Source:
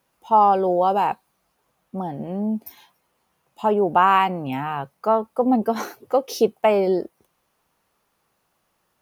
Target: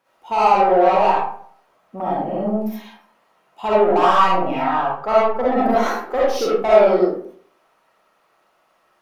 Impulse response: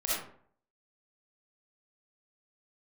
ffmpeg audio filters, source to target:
-filter_complex "[0:a]asettb=1/sr,asplit=3[a][b][c];[a]atrim=end=4.464[d];[b]atrim=start=4.46:end=5.49,asetpts=PTS-STARTPTS,afade=t=in:d=0.004:c=qsin,afade=t=out:st=1.026:d=0.004:c=qsin,highshelf=f=5.6k:g=-8[e];[c]atrim=start=5.486[f];[d][e]acrossfade=d=0.004:c1=hsin:c2=qsin[g];[g][f]acrossfade=d=0.004:c1=qsin:c2=hsin,asplit=2[h][i];[i]highpass=f=720:p=1,volume=20dB,asoftclip=type=tanh:threshold=-5dB[j];[h][j]amix=inputs=2:normalize=0,lowpass=f=1.7k:p=1,volume=-6dB[k];[1:a]atrim=start_sample=2205[l];[k][l]afir=irnorm=-1:irlink=0,volume=-7.5dB"

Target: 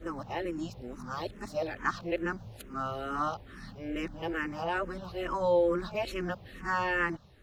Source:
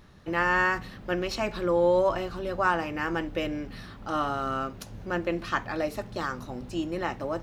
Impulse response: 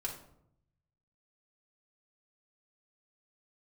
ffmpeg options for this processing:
-filter_complex "[0:a]areverse,asplit=2[a][b];[b]afreqshift=-2.3[c];[a][c]amix=inputs=2:normalize=1,volume=-1.5dB"

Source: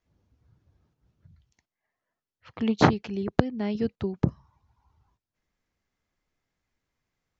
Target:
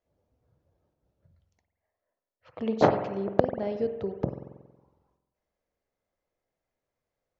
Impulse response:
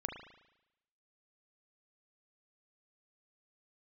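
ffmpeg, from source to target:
-filter_complex "[0:a]equalizer=f=570:t=o:w=1.1:g=15,asplit=2[a][b];[1:a]atrim=start_sample=2205,asetrate=34839,aresample=44100[c];[b][c]afir=irnorm=-1:irlink=0,volume=0.5dB[d];[a][d]amix=inputs=2:normalize=0,volume=-15dB"

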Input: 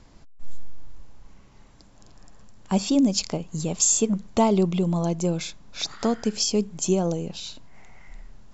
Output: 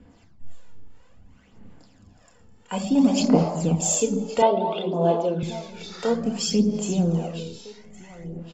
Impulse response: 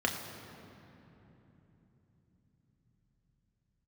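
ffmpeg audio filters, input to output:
-filter_complex "[0:a]asettb=1/sr,asplit=3[a][b][c];[a]atrim=end=2.954[d];[b]atrim=start=2.95:end=3.74,asetpts=PTS-STARTPTS,afade=t=in:d=0.004:c=qsin,afade=t=out:st=0.786:d=0.004:c=qsin,equalizer=f=1k:t=o:w=1.8:g=15[e];[c]atrim=start=3.736[f];[d][e]acrossfade=d=0.004:c1=hsin:c2=qsin[g];[g][f]acrossfade=d=0.004:c1=qsin:c2=hsin,aecho=1:1:1114:0.15[h];[1:a]atrim=start_sample=2205,afade=t=out:st=0.36:d=0.01,atrim=end_sample=16317[i];[h][i]afir=irnorm=-1:irlink=0,acrossover=split=470[j][k];[j]aeval=exprs='val(0)*(1-0.7/2+0.7/2*cos(2*PI*2.4*n/s))':c=same[l];[k]aeval=exprs='val(0)*(1-0.7/2-0.7/2*cos(2*PI*2.4*n/s))':c=same[m];[l][m]amix=inputs=2:normalize=0,aphaser=in_gain=1:out_gain=1:delay=2.3:decay=0.5:speed=0.59:type=sinusoidal,asettb=1/sr,asplit=3[n][o][p];[n]atrim=end=4.424[q];[o]atrim=start=4.42:end=5.43,asetpts=PTS-STARTPTS,afade=t=in:d=0.004:c=qsin,afade=t=out:st=1.006:d=0.004:c=qsin,highpass=340,equalizer=f=400:t=q:w=4:g=7,equalizer=f=620:t=q:w=4:g=9,equalizer=f=930:t=q:w=4:g=6,equalizer=f=1.5k:t=q:w=4:g=4,equalizer=f=2.2k:t=q:w=4:g=-6,equalizer=f=3.5k:t=q:w=4:g=7,lowpass=f=4.1k:w=0.5412,lowpass=f=4.1k:w=1.3066[r];[p]atrim=start=5.426[s];[q][r]acrossfade=d=0.004:c1=hsin:c2=qsin[t];[t][s]acrossfade=d=0.004:c1=qsin:c2=hsin,volume=-6.5dB"

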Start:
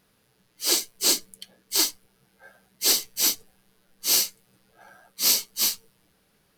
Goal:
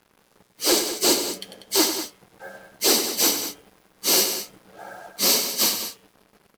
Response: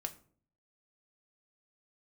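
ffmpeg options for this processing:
-filter_complex "[0:a]highpass=f=69:w=0.5412,highpass=f=69:w=1.3066,equalizer=f=420:w=0.31:g=12.5,bandreject=f=143.2:t=h:w=4,bandreject=f=286.4:t=h:w=4,bandreject=f=429.6:t=h:w=4,bandreject=f=572.8:t=h:w=4,bandreject=f=716:t=h:w=4,bandreject=f=859.2:t=h:w=4,bandreject=f=1.0024k:t=h:w=4,bandreject=f=1.1456k:t=h:w=4,bandreject=f=1.2888k:t=h:w=4,bandreject=f=1.432k:t=h:w=4,bandreject=f=1.5752k:t=h:w=4,bandreject=f=1.7184k:t=h:w=4,bandreject=f=1.8616k:t=h:w=4,bandreject=f=2.0048k:t=h:w=4,bandreject=f=2.148k:t=h:w=4,bandreject=f=2.2912k:t=h:w=4,bandreject=f=2.4344k:t=h:w=4,bandreject=f=2.5776k:t=h:w=4,bandreject=f=2.7208k:t=h:w=4,bandreject=f=2.864k:t=h:w=4,bandreject=f=3.0072k:t=h:w=4,bandreject=f=3.1504k:t=h:w=4,bandreject=f=3.2936k:t=h:w=4,asplit=2[a][b];[b]alimiter=limit=-12.5dB:level=0:latency=1:release=124,volume=2.5dB[c];[a][c]amix=inputs=2:normalize=0,volume=6.5dB,asoftclip=hard,volume=-6.5dB,flanger=delay=1:depth=4.5:regen=76:speed=1.8:shape=sinusoidal,acrusher=bits=7:mix=0:aa=0.5,aecho=1:1:96.21|192.4:0.355|0.282"

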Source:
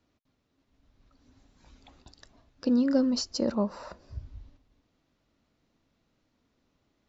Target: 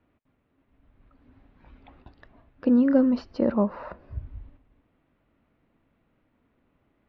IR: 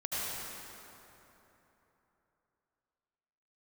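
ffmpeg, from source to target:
-filter_complex "[0:a]lowpass=f=2.6k:w=0.5412,lowpass=f=2.6k:w=1.3066,asplit=2[a][b];[1:a]atrim=start_sample=2205,afade=t=out:st=0.15:d=0.01,atrim=end_sample=7056[c];[b][c]afir=irnorm=-1:irlink=0,volume=-30dB[d];[a][d]amix=inputs=2:normalize=0,volume=4.5dB"

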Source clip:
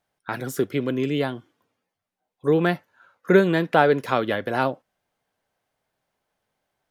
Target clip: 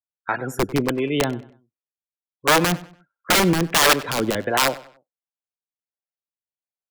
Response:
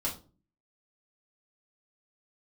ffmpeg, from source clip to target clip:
-filter_complex "[0:a]afftdn=nr=35:nf=-37,aeval=exprs='(mod(5.01*val(0)+1,2)-1)/5.01':c=same,acrossover=split=430[a][b];[a]aeval=exprs='val(0)*(1-0.7/2+0.7/2*cos(2*PI*1.4*n/s))':c=same[c];[b]aeval=exprs='val(0)*(1-0.7/2-0.7/2*cos(2*PI*1.4*n/s))':c=same[d];[c][d]amix=inputs=2:normalize=0,acontrast=74,asplit=2[e][f];[f]adelay=96,lowpass=f=4.9k:p=1,volume=-18dB,asplit=2[g][h];[h]adelay=96,lowpass=f=4.9k:p=1,volume=0.36,asplit=2[i][j];[j]adelay=96,lowpass=f=4.9k:p=1,volume=0.36[k];[e][g][i][k]amix=inputs=4:normalize=0"

